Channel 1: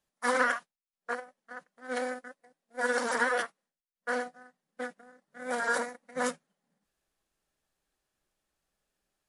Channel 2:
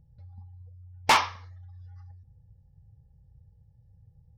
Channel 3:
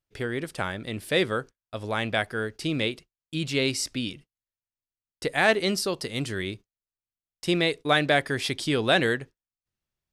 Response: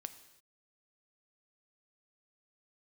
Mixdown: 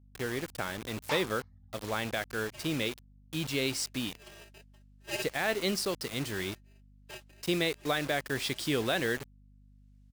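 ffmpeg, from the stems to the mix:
-filter_complex "[0:a]bandpass=f=4000:t=q:w=0.58:csg=0,aeval=exprs='val(0)*sgn(sin(2*PI*1100*n/s))':c=same,adelay=2300,volume=1.12[s0];[1:a]volume=0.158[s1];[2:a]lowshelf=f=86:g=-4,alimiter=limit=0.2:level=0:latency=1:release=164,acrusher=bits=5:mix=0:aa=0.000001,volume=0.596,asplit=2[s2][s3];[s3]apad=whole_len=511092[s4];[s0][s4]sidechaincompress=threshold=0.00398:ratio=10:attack=24:release=602[s5];[s5][s1][s2]amix=inputs=3:normalize=0,aeval=exprs='val(0)+0.00141*(sin(2*PI*50*n/s)+sin(2*PI*2*50*n/s)/2+sin(2*PI*3*50*n/s)/3+sin(2*PI*4*50*n/s)/4+sin(2*PI*5*50*n/s)/5)':c=same"

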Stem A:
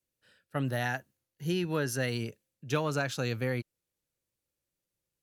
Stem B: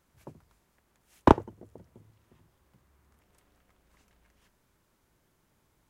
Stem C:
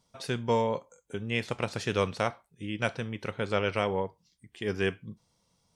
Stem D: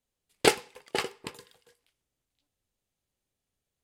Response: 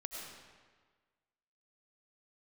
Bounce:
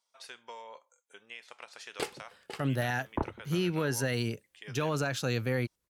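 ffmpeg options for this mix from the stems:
-filter_complex "[0:a]adelay=2050,volume=1.26[s0];[1:a]lowpass=1900,afwtdn=0.01,adelay=1900,volume=0.531[s1];[2:a]highpass=860,acompressor=threshold=0.0178:ratio=6,volume=0.447[s2];[3:a]adelay=1550,volume=0.211[s3];[s0][s1][s2][s3]amix=inputs=4:normalize=0,alimiter=limit=0.1:level=0:latency=1:release=21"

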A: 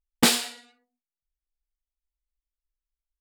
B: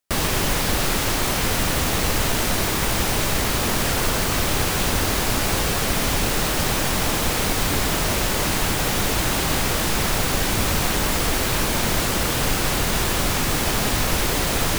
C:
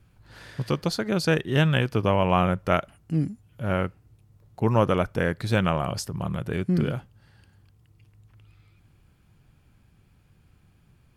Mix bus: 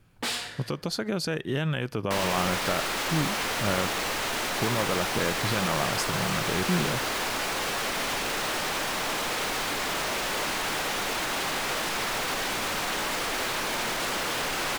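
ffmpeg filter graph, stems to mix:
-filter_complex "[0:a]volume=0.237[s0];[1:a]adelay=2000,volume=0.447[s1];[2:a]alimiter=limit=0.112:level=0:latency=1:release=112,volume=1.26[s2];[s0][s1]amix=inputs=2:normalize=0,asplit=2[s3][s4];[s4]highpass=f=720:p=1,volume=8.91,asoftclip=type=tanh:threshold=0.2[s5];[s3][s5]amix=inputs=2:normalize=0,lowpass=f=3400:p=1,volume=0.501,alimiter=limit=0.0794:level=0:latency=1,volume=1[s6];[s2][s6]amix=inputs=2:normalize=0,equalizer=f=66:w=0.76:g=-8.5"

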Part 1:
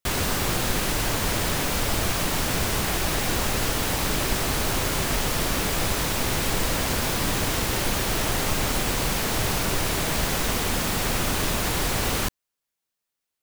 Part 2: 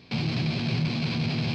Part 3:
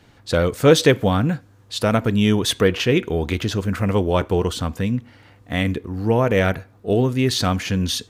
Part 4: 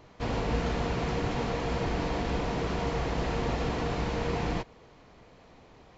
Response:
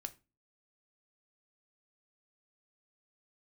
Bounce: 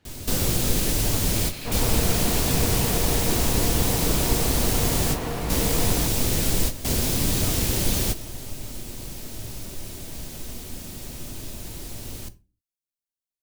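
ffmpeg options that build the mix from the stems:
-filter_complex "[0:a]equalizer=f=1300:w=0.52:g=-13.5,volume=1.33,asplit=2[s0][s1];[s1]volume=0.335[s2];[1:a]highpass=1000,adelay=1250,volume=0.596[s3];[2:a]acompressor=threshold=0.0794:ratio=10,volume=0.188,asplit=3[s4][s5][s6];[s5]volume=0.398[s7];[3:a]adelay=1450,volume=1.12[s8];[s6]apad=whole_len=591913[s9];[s0][s9]sidechaingate=range=0.0224:threshold=0.00141:ratio=16:detection=peak[s10];[4:a]atrim=start_sample=2205[s11];[s2][s7]amix=inputs=2:normalize=0[s12];[s12][s11]afir=irnorm=-1:irlink=0[s13];[s10][s3][s4][s8][s13]amix=inputs=5:normalize=0"

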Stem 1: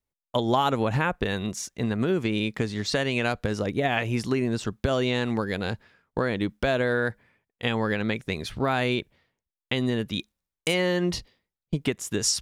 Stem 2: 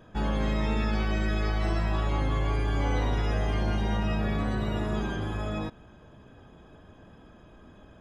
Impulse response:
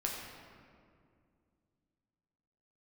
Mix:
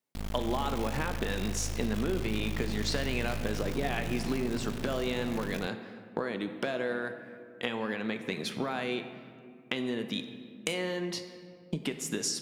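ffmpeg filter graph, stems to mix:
-filter_complex "[0:a]highpass=f=160:w=0.5412,highpass=f=160:w=1.3066,acompressor=threshold=0.0251:ratio=6,volume=0.841,asplit=2[s0][s1];[s1]volume=0.562[s2];[1:a]firequalizer=gain_entry='entry(190,0);entry(290,-22);entry(910,-24);entry(2100,-6)':delay=0.05:min_phase=1,acrusher=bits=3:dc=4:mix=0:aa=0.000001,volume=0.631[s3];[2:a]atrim=start_sample=2205[s4];[s2][s4]afir=irnorm=-1:irlink=0[s5];[s0][s3][s5]amix=inputs=3:normalize=0"

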